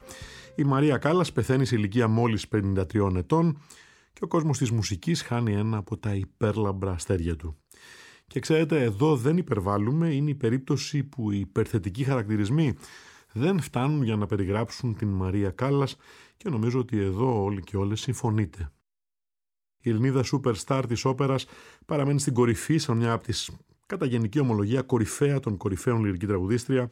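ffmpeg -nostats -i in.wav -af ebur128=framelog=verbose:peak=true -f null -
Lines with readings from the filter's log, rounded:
Integrated loudness:
  I:         -26.3 LUFS
  Threshold: -36.8 LUFS
Loudness range:
  LRA:         3.4 LU
  Threshold: -47.1 LUFS
  LRA low:   -28.8 LUFS
  LRA high:  -25.4 LUFS
True peak:
  Peak:       -8.3 dBFS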